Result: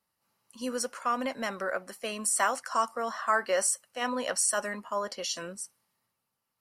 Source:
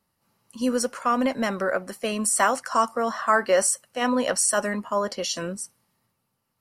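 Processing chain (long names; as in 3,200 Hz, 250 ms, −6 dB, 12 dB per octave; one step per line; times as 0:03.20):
low-shelf EQ 400 Hz −9.5 dB
level −4.5 dB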